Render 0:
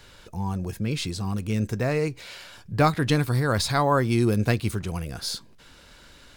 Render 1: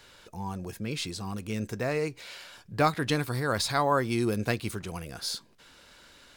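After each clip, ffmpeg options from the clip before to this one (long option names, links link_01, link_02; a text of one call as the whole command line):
ffmpeg -i in.wav -af "lowshelf=frequency=170:gain=-10,volume=-2.5dB" out.wav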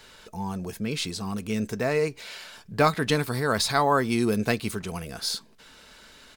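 ffmpeg -i in.wav -af "aecho=1:1:4.6:0.34,volume=3.5dB" out.wav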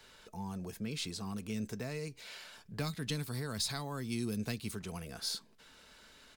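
ffmpeg -i in.wav -filter_complex "[0:a]acrossover=split=240|3000[link_01][link_02][link_03];[link_02]acompressor=threshold=-35dB:ratio=6[link_04];[link_01][link_04][link_03]amix=inputs=3:normalize=0,volume=-8dB" out.wav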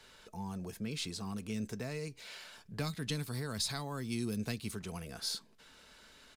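ffmpeg -i in.wav -af "aresample=32000,aresample=44100" out.wav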